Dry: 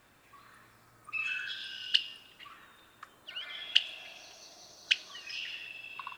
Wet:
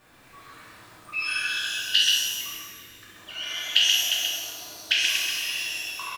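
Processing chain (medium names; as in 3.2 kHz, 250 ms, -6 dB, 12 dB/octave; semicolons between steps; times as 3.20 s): chunks repeated in reverse 219 ms, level -7 dB; 2.49–3.15 s: high-order bell 830 Hz -14.5 dB; delay 132 ms -3.5 dB; pitch-shifted reverb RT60 1 s, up +12 st, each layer -8 dB, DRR -5 dB; trim +1.5 dB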